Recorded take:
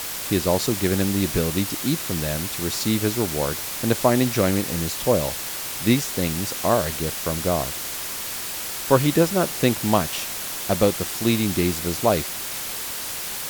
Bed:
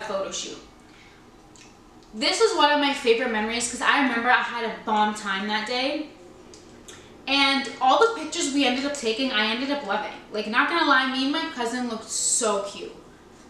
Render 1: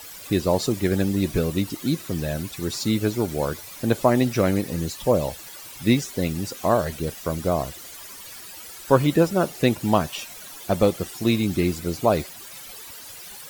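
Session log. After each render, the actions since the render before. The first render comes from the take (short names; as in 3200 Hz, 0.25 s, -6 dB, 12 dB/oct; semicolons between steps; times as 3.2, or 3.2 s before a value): denoiser 14 dB, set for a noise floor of -31 dBFS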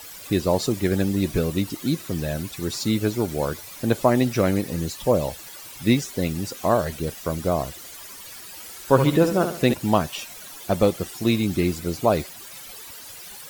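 8.45–9.74 flutter echo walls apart 12 m, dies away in 0.5 s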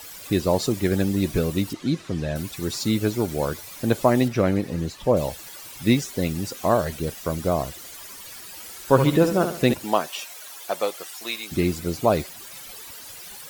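1.73–2.36 air absorption 83 m; 4.28–5.17 LPF 3000 Hz 6 dB/oct; 9.82–11.51 HPF 340 Hz -> 1000 Hz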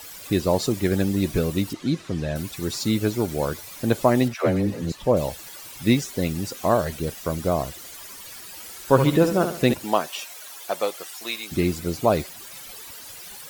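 4.34–4.92 dispersion lows, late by 0.111 s, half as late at 400 Hz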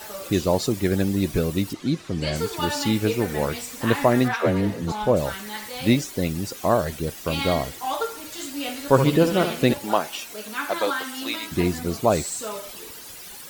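add bed -9 dB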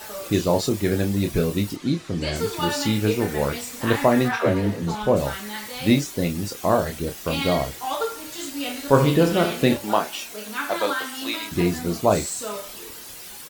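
doubler 29 ms -6.5 dB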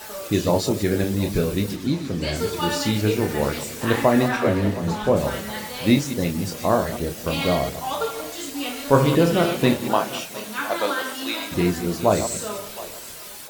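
reverse delay 0.104 s, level -10 dB; split-band echo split 560 Hz, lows 0.238 s, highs 0.716 s, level -16 dB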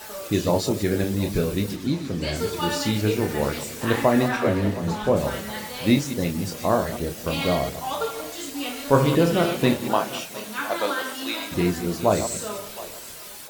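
gain -1.5 dB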